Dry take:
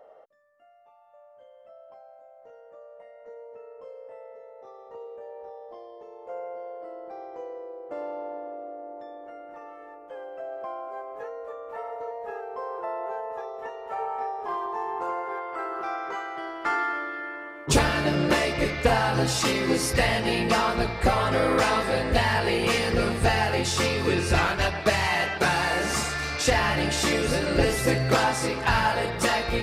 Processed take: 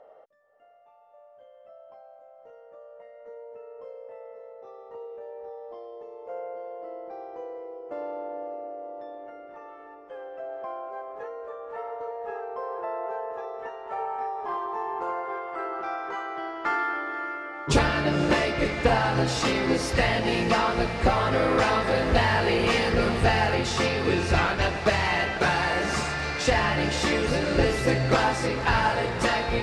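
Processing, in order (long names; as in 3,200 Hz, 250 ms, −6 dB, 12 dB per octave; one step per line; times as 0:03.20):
0:21.87–0:23.55: converter with a step at zero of −33 dBFS
high-frequency loss of the air 71 metres
feedback delay with all-pass diffusion 537 ms, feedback 68%, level −13 dB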